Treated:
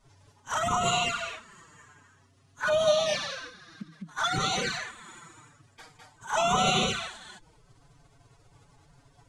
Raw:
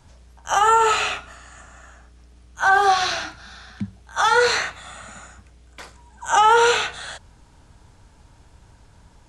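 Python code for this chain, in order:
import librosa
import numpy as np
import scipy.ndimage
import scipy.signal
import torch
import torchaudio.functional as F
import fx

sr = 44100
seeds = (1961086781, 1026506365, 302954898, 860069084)

y = fx.echo_multitap(x, sr, ms=(68, 208), db=(-12.5, -3.0))
y = fx.pitch_keep_formants(y, sr, semitones=8.0)
y = fx.env_flanger(y, sr, rest_ms=7.7, full_db=-13.0)
y = F.gain(torch.from_numpy(y), -6.0).numpy()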